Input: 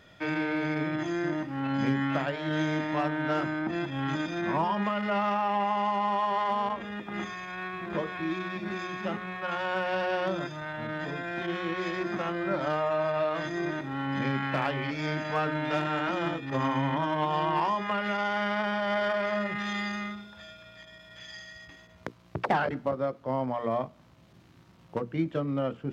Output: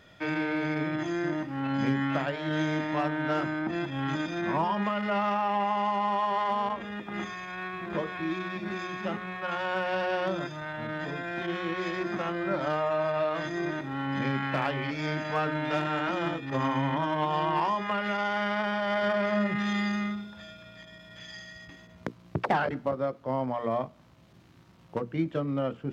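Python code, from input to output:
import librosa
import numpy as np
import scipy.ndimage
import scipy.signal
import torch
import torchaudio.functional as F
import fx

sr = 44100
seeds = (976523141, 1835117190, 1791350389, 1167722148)

y = fx.peak_eq(x, sr, hz=200.0, db=6.5, octaves=1.8, at=(19.03, 22.39))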